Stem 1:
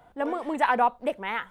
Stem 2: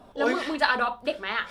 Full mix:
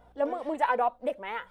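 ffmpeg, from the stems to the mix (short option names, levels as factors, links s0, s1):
-filter_complex "[0:a]equalizer=f=590:t=o:w=0.66:g=8,volume=0.708,asplit=2[s0][s1];[1:a]acompressor=threshold=0.0355:ratio=6,aeval=exprs='val(0)+0.00501*(sin(2*PI*60*n/s)+sin(2*PI*2*60*n/s)/2+sin(2*PI*3*60*n/s)/3+sin(2*PI*4*60*n/s)/4+sin(2*PI*5*60*n/s)/5)':c=same,volume=-1,volume=0.316[s2];[s1]apad=whole_len=66587[s3];[s2][s3]sidechaincompress=threshold=0.0282:ratio=8:attack=16:release=996[s4];[s0][s4]amix=inputs=2:normalize=0,flanger=delay=2:depth=2:regen=37:speed=1.4:shape=sinusoidal"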